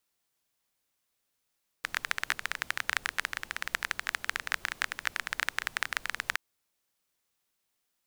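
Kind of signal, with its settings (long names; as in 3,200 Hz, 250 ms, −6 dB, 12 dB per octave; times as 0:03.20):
rain-like ticks over hiss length 4.52 s, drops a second 17, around 1,700 Hz, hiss −19 dB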